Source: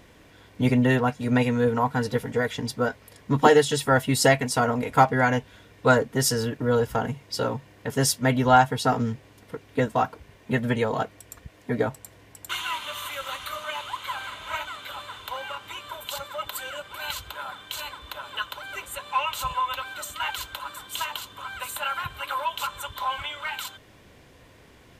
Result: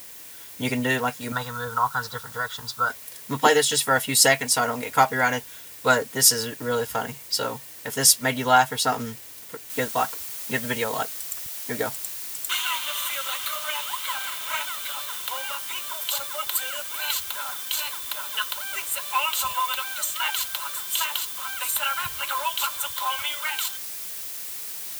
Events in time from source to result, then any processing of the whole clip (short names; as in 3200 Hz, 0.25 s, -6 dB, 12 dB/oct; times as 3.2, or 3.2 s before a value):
1.32–2.9 EQ curve 120 Hz 0 dB, 290 Hz -16 dB, 840 Hz -2 dB, 1300 Hz +10 dB, 2400 Hz -21 dB, 3600 Hz -1 dB, 7900 Hz -10 dB, 12000 Hz -20 dB
9.7 noise floor step -53 dB -45 dB
21.68–22.48 low shelf 120 Hz +9.5 dB
whole clip: tilt +3 dB/oct